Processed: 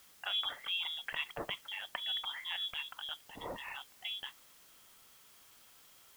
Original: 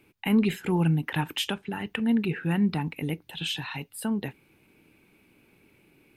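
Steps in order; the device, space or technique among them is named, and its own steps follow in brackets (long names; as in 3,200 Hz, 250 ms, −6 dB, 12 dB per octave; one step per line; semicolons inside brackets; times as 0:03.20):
scrambled radio voice (band-pass filter 370–2,700 Hz; voice inversion scrambler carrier 3,600 Hz; white noise bed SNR 19 dB)
level −6 dB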